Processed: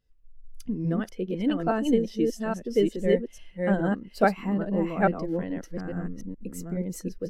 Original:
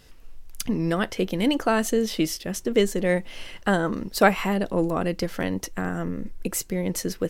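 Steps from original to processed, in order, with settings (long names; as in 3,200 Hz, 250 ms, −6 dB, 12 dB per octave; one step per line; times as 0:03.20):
delay that plays each chunk backwards 423 ms, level −1 dB
every bin expanded away from the loudest bin 1.5 to 1
level −4.5 dB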